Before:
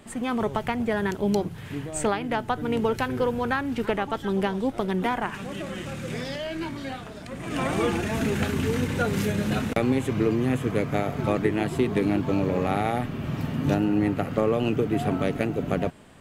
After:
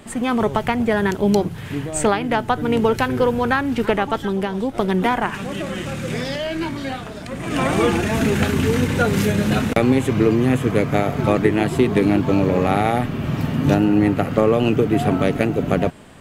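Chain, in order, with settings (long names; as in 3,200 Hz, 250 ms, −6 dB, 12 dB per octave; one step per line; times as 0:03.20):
0:04.17–0:04.75: downward compressor 4 to 1, threshold −26 dBFS, peak gain reduction 6 dB
level +7 dB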